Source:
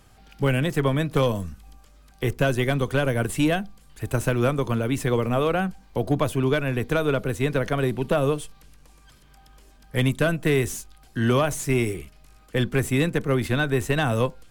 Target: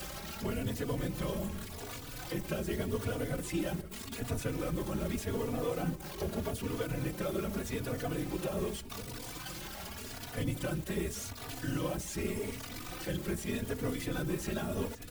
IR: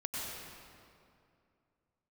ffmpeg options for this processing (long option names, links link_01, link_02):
-filter_complex "[0:a]aeval=exprs='val(0)+0.5*0.0562*sgn(val(0))':channel_layout=same,acrossover=split=5900[link_01][link_02];[link_02]acompressor=threshold=-41dB:ratio=4:attack=1:release=60[link_03];[link_01][link_03]amix=inputs=2:normalize=0,aemphasis=mode=production:type=50kf,acrossover=split=95|640|6000[link_04][link_05][link_06][link_07];[link_04]acompressor=threshold=-44dB:ratio=4[link_08];[link_05]acompressor=threshold=-22dB:ratio=4[link_09];[link_06]acompressor=threshold=-34dB:ratio=4[link_10];[link_07]acompressor=threshold=-35dB:ratio=4[link_11];[link_08][link_09][link_10][link_11]amix=inputs=4:normalize=0,asoftclip=type=tanh:threshold=-17.5dB,afftfilt=real='hypot(re,im)*cos(2*PI*random(0))':imag='hypot(re,im)*sin(2*PI*random(1))':win_size=512:overlap=0.75,asplit=5[link_12][link_13][link_14][link_15][link_16];[link_13]adelay=499,afreqshift=-65,volume=-14dB[link_17];[link_14]adelay=998,afreqshift=-130,volume=-22.2dB[link_18];[link_15]adelay=1497,afreqshift=-195,volume=-30.4dB[link_19];[link_16]adelay=1996,afreqshift=-260,volume=-38.5dB[link_20];[link_12][link_17][link_18][link_19][link_20]amix=inputs=5:normalize=0,asetrate=42336,aresample=44100,asplit=2[link_21][link_22];[link_22]adelay=3.4,afreqshift=0.84[link_23];[link_21][link_23]amix=inputs=2:normalize=1"